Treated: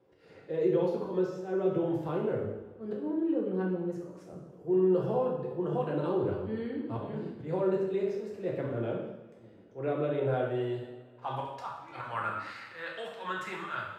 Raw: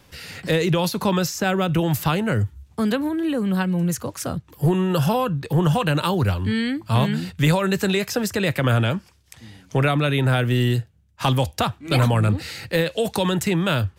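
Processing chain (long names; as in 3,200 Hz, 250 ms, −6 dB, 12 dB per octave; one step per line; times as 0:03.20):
band-pass filter sweep 420 Hz → 1,300 Hz, 0:09.86–0:12.19
volume swells 134 ms
coupled-rooms reverb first 0.89 s, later 3.3 s, from −21 dB, DRR −3 dB
level −5.5 dB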